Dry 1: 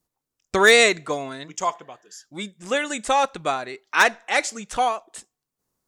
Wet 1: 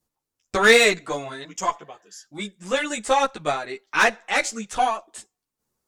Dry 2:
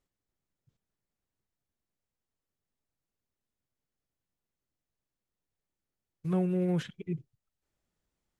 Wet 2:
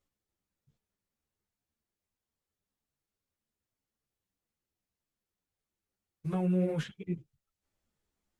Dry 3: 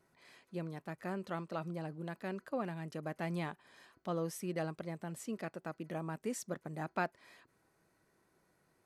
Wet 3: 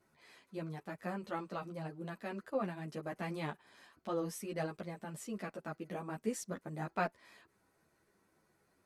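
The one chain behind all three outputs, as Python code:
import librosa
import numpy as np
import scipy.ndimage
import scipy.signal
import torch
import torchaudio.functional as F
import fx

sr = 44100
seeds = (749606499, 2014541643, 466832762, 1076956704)

y = fx.tube_stage(x, sr, drive_db=9.0, bias=0.35)
y = fx.ensemble(y, sr)
y = y * 10.0 ** (4.0 / 20.0)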